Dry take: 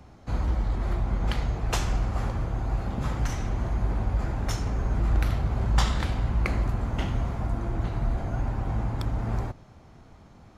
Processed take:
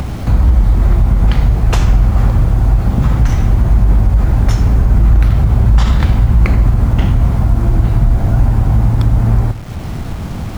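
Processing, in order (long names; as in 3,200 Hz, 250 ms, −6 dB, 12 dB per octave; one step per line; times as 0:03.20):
upward compression, threshold −31 dBFS
on a send: feedback echo with a low-pass in the loop 80 ms, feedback 44%, level −18 dB
on the sum: bit-depth reduction 8 bits, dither none
in parallel at +2.5 dB: downward compressor, threshold −33 dBFS, peak gain reduction 16 dB
on the sum: bass and treble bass +8 dB, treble −4 dB
boost into a limiter +7.5 dB
level −1 dB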